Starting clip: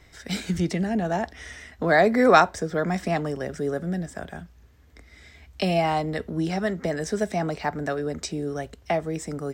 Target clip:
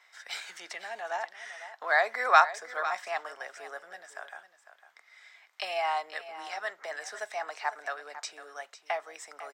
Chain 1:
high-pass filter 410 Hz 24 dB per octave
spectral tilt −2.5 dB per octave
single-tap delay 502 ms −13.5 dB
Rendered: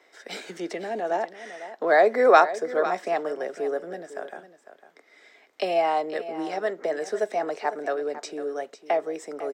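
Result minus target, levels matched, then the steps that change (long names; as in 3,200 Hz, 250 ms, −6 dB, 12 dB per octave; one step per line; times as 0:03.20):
500 Hz band +7.5 dB
change: high-pass filter 890 Hz 24 dB per octave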